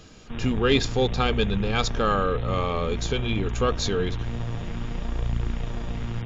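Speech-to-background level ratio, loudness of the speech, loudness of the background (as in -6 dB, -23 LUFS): 6.5 dB, -25.5 LUFS, -32.0 LUFS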